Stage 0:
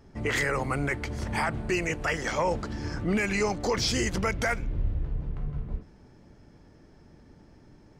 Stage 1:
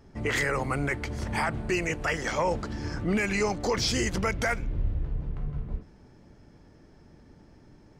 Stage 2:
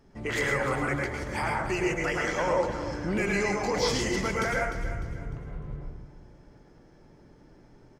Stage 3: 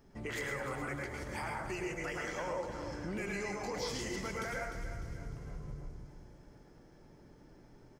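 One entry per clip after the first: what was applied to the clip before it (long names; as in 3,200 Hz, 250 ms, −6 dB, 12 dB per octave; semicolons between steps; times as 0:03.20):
no processing that can be heard
parametric band 83 Hz −9 dB 0.56 octaves; repeating echo 301 ms, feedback 36%, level −11.5 dB; convolution reverb RT60 0.50 s, pre-delay 98 ms, DRR −1.5 dB; level −3.5 dB
high-shelf EQ 11,000 Hz +9 dB; downward compressor 2 to 1, threshold −38 dBFS, peak gain reduction 9.5 dB; delay with a high-pass on its return 212 ms, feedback 74%, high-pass 4,700 Hz, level −14 dB; level −3.5 dB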